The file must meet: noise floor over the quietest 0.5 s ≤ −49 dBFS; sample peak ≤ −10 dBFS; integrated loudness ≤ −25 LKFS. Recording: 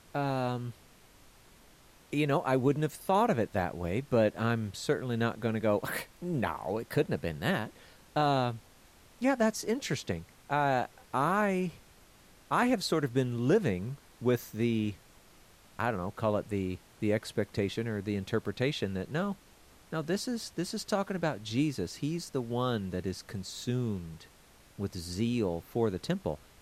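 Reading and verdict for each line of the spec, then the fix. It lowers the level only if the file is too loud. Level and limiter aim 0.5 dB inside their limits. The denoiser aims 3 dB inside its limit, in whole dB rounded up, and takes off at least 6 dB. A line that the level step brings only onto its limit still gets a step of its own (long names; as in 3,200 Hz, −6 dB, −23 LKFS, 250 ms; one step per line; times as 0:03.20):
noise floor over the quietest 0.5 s −59 dBFS: in spec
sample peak −15.5 dBFS: in spec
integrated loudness −32.0 LKFS: in spec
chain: no processing needed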